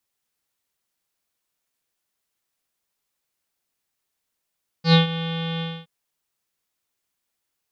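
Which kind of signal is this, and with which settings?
subtractive voice square E3 24 dB per octave, low-pass 3,400 Hz, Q 7.9, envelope 0.5 octaves, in 0.16 s, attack 94 ms, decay 0.13 s, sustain −15 dB, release 0.25 s, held 0.77 s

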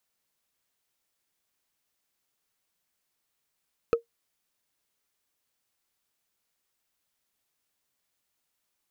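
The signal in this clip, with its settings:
struck wood, lowest mode 465 Hz, decay 0.12 s, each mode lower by 8 dB, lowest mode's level −14 dB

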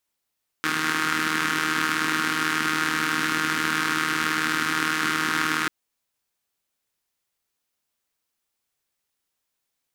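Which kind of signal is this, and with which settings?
pulse-train model of a four-cylinder engine, steady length 5.04 s, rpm 4,700, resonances 280/1,400 Hz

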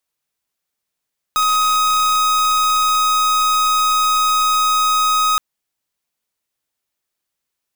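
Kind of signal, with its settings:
pulse wave 1,260 Hz, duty 44% −15.5 dBFS 4.02 s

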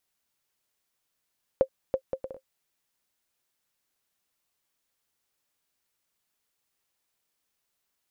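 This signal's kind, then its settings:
bouncing ball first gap 0.33 s, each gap 0.58, 529 Hz, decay 76 ms −10.5 dBFS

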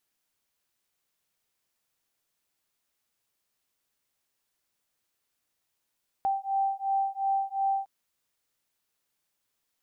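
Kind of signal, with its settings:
two tones that beat 781 Hz, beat 2.8 Hz, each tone −28.5 dBFS 1.61 s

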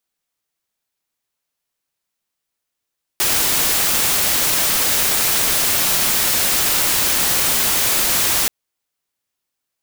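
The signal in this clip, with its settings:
noise white, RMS −17 dBFS 5.28 s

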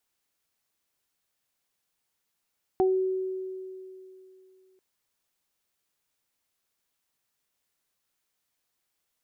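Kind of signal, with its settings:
harmonic partials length 1.99 s, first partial 376 Hz, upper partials −4 dB, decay 2.85 s, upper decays 0.22 s, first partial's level −19 dB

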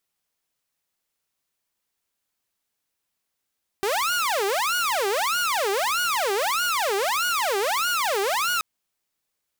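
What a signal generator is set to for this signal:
siren wail 389–1,450 Hz 1.6 per second saw −19 dBFS 4.78 s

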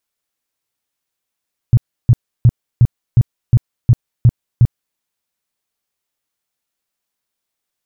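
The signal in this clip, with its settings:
tone bursts 119 Hz, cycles 5, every 0.36 s, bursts 9, −4 dBFS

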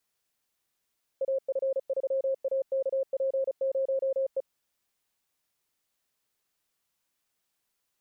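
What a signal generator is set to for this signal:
Morse code "AF3AKP0E" 35 words per minute 536 Hz −24.5 dBFS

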